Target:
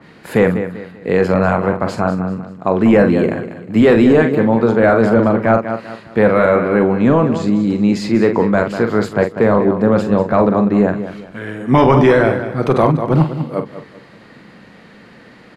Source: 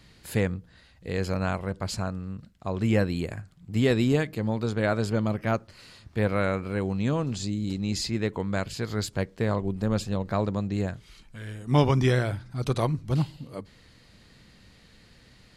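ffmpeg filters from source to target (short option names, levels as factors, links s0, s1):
-filter_complex "[0:a]acrossover=split=160 2200:gain=0.0631 1 0.141[s0][s1][s2];[s0][s1][s2]amix=inputs=3:normalize=0,asplit=2[s3][s4];[s4]adelay=44,volume=0.355[s5];[s3][s5]amix=inputs=2:normalize=0,aecho=1:1:194|388|582:0.251|0.0829|0.0274,apsyclip=11.9,adynamicequalizer=threshold=0.0501:dfrequency=2100:dqfactor=0.7:tfrequency=2100:tqfactor=0.7:attack=5:release=100:ratio=0.375:range=2:mode=cutabove:tftype=highshelf,volume=0.631"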